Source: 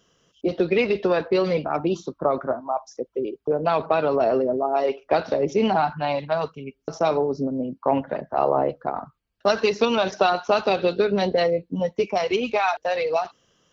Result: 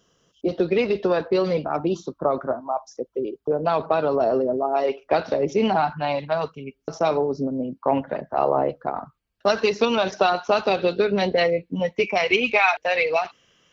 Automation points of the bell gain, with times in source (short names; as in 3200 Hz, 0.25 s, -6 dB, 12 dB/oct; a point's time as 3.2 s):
bell 2300 Hz
3.92 s -4 dB
4.33 s -11 dB
4.65 s +1 dB
10.89 s +1 dB
11.68 s +12 dB